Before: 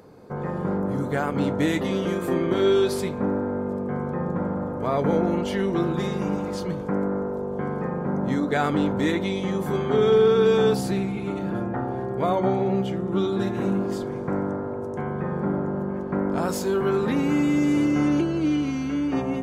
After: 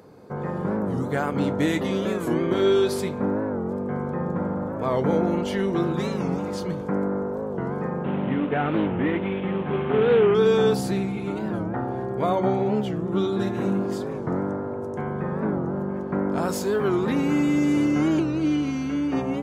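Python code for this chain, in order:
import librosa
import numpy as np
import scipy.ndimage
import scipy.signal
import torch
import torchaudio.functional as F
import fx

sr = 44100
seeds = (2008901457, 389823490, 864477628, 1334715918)

y = fx.cvsd(x, sr, bps=16000, at=(8.04, 10.35))
y = scipy.signal.sosfilt(scipy.signal.butter(2, 57.0, 'highpass', fs=sr, output='sos'), y)
y = fx.record_warp(y, sr, rpm=45.0, depth_cents=160.0)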